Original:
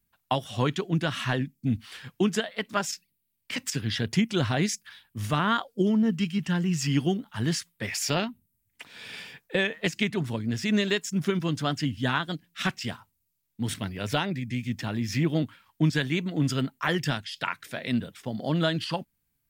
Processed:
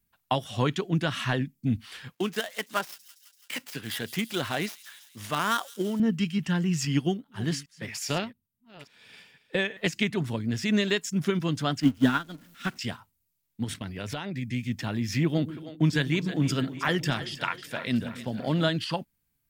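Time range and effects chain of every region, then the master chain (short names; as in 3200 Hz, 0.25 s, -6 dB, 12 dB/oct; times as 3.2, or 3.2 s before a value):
2.13–6 switching dead time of 0.058 ms + HPF 440 Hz 6 dB/oct + thin delay 0.167 s, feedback 66%, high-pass 5400 Hz, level -9 dB
6.85–9.77 reverse delay 0.405 s, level -13.5 dB + upward expander, over -45 dBFS
11.8–12.79 zero-crossing step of -31 dBFS + small resonant body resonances 260/1400 Hz, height 10 dB, ringing for 40 ms + upward expander 2.5:1, over -29 dBFS
13.64–14.37 expander -36 dBFS + high shelf 12000 Hz -5.5 dB + compressor 4:1, threshold -30 dBFS
15.25–18.69 expander -52 dBFS + split-band echo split 380 Hz, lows 0.124 s, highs 0.315 s, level -12 dB
whole clip: dry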